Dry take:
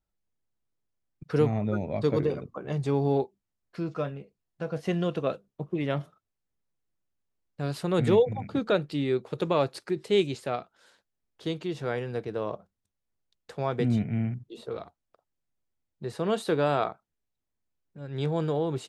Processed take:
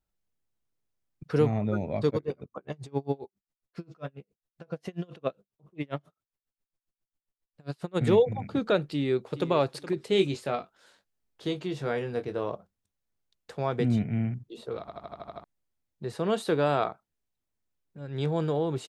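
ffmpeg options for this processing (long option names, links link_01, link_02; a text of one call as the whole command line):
ffmpeg -i in.wav -filter_complex "[0:a]asplit=3[link_01][link_02][link_03];[link_01]afade=type=out:start_time=2.09:duration=0.02[link_04];[link_02]aeval=exprs='val(0)*pow(10,-33*(0.5-0.5*cos(2*PI*7.4*n/s))/20)':channel_layout=same,afade=type=in:start_time=2.09:duration=0.02,afade=type=out:start_time=8:duration=0.02[link_05];[link_03]afade=type=in:start_time=8:duration=0.02[link_06];[link_04][link_05][link_06]amix=inputs=3:normalize=0,asplit=2[link_07][link_08];[link_08]afade=type=in:start_time=8.9:duration=0.01,afade=type=out:start_time=9.51:duration=0.01,aecho=0:1:420|840:0.199526|0.0399052[link_09];[link_07][link_09]amix=inputs=2:normalize=0,asettb=1/sr,asplit=3[link_10][link_11][link_12];[link_10]atrim=end=10.104[link_13];[link_11]atrim=start=10.1:end=12.49,asetpts=PTS-STARTPTS,afade=type=in:duration=0.004:curve=qsin,afade=type=out:start_time=2.386:duration=0.004:curve=qsin,asplit=2[link_14][link_15];[link_15]adelay=21,volume=-7.5dB[link_16];[link_14][link_16]amix=inputs=2:normalize=0,atrim=end_sample=105399[link_17];[link_12]atrim=start=12.486[link_18];[link_13][link_17]acrossfade=duration=0.004:curve1=hsin:curve2=qsin[link_19];[link_19][link_18]acrossfade=duration=0.004:curve1=qsin:curve2=hsin,asplit=9[link_20][link_21][link_22][link_23][link_24][link_25][link_26][link_27][link_28];[link_20]atrim=end=14.882[link_29];[link_21]atrim=start=14.798:end=14.882[link_30];[link_22]atrim=start=14.798:end=14.882[link_31];[link_23]atrim=start=14.798:end=14.882[link_32];[link_24]atrim=start=14.798:end=14.882[link_33];[link_25]atrim=start=14.798:end=14.882[link_34];[link_26]atrim=start=14.798:end=14.882[link_35];[link_27]atrim=start=14.798:end=14.882[link_36];[link_28]atrim=start=15.438[link_37];[link_29][link_30]acrossfade=duration=0.004:curve1=hsin:curve2=hsin[link_38];[link_38][link_31]acrossfade=duration=0.004:curve1=hsin:curve2=hsin[link_39];[link_39][link_32]acrossfade=duration=0.004:curve1=hsin:curve2=hsin[link_40];[link_40][link_33]acrossfade=duration=0.004:curve1=hsin:curve2=hsin[link_41];[link_41][link_34]acrossfade=duration=0.004:curve1=hsin:curve2=hsin[link_42];[link_42][link_35]acrossfade=duration=0.004:curve1=hsin:curve2=hsin[link_43];[link_43][link_36]acrossfade=duration=0.004:curve1=hsin:curve2=hsin[link_44];[link_44][link_37]acrossfade=duration=0.004:curve1=hsin:curve2=hsin" out.wav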